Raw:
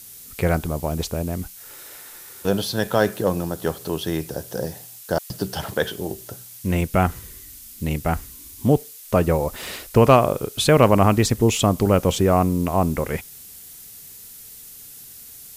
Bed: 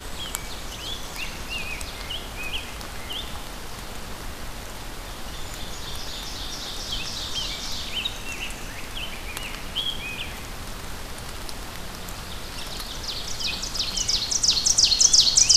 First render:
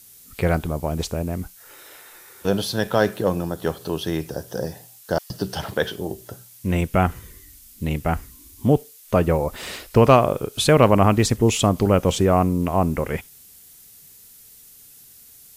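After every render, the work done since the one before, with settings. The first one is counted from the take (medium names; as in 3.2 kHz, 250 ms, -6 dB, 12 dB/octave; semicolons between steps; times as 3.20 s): noise print and reduce 6 dB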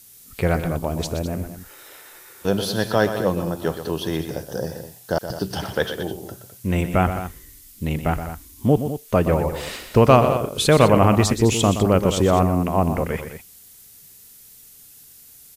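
loudspeakers at several distances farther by 42 m -10 dB, 71 m -12 dB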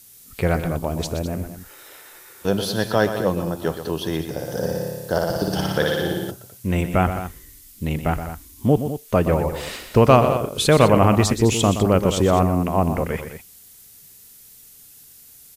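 4.33–6.31 s: flutter echo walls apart 10 m, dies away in 1.3 s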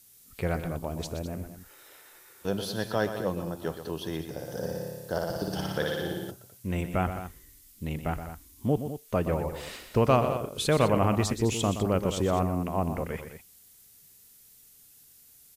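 trim -9 dB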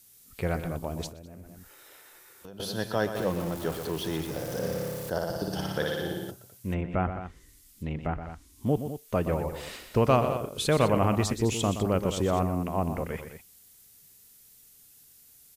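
1.09–2.60 s: compression 4:1, threshold -44 dBFS; 3.15–5.10 s: jump at every zero crossing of -35 dBFS; 6.73–8.66 s: low-pass that closes with the level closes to 2 kHz, closed at -27.5 dBFS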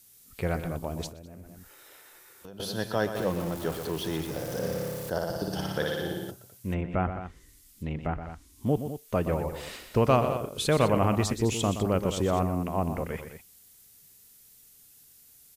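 no audible change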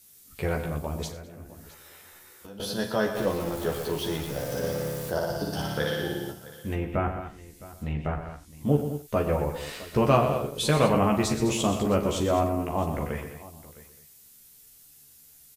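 doubling 14 ms -3 dB; multi-tap echo 41/91/662 ms -11/-16/-18.5 dB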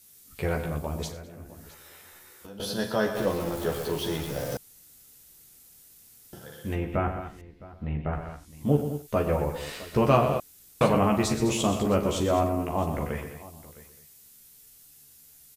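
4.57–6.33 s: room tone; 7.41–8.13 s: distance through air 350 m; 10.40–10.81 s: room tone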